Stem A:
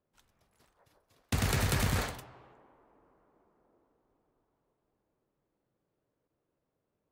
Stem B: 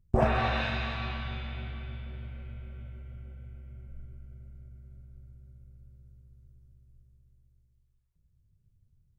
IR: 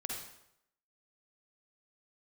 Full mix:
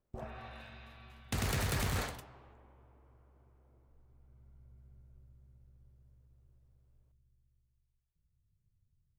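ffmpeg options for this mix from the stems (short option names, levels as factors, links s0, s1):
-filter_complex "[0:a]volume=0.708[s0];[1:a]volume=0.355,afade=t=in:st=4.01:d=0.78:silence=0.266073[s1];[s0][s1]amix=inputs=2:normalize=0,aeval=exprs='0.0447*(abs(mod(val(0)/0.0447+3,4)-2)-1)':c=same"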